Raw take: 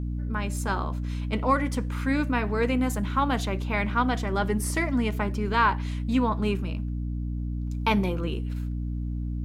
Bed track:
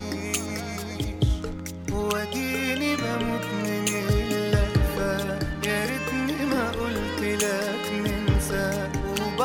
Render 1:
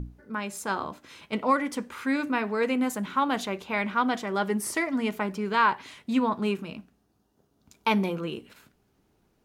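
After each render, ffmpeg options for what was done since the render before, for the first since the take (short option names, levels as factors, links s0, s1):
-af "bandreject=f=60:t=h:w=6,bandreject=f=120:t=h:w=6,bandreject=f=180:t=h:w=6,bandreject=f=240:t=h:w=6,bandreject=f=300:t=h:w=6"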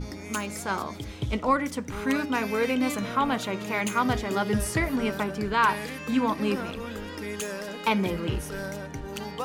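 -filter_complex "[1:a]volume=0.376[s0];[0:a][s0]amix=inputs=2:normalize=0"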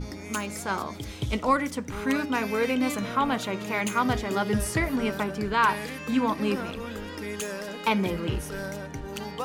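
-filter_complex "[0:a]asettb=1/sr,asplit=3[s0][s1][s2];[s0]atrim=end=1.034[s3];[s1]atrim=start=1.03:end=1.66,asetpts=PTS-STARTPTS,afade=t=in:d=0.004:c=qsin,afade=t=out:st=0.626:d=0.004:c=qsin,highshelf=f=3800:g=7[s4];[s2]atrim=start=1.656[s5];[s3][s4]acrossfade=d=0.004:c1=hsin:c2=qsin[s6];[s6][s5]acrossfade=d=0.004:c1=qsin:c2=hsin"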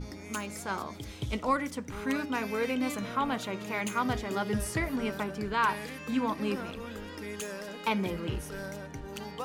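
-af "volume=0.562"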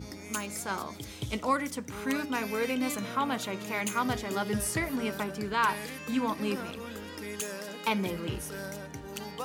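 -af "highpass=77,highshelf=f=5300:g=7.5"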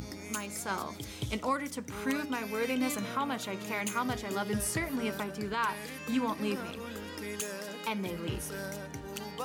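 -af "alimiter=limit=0.0944:level=0:latency=1:release=487,acompressor=mode=upward:threshold=0.01:ratio=2.5"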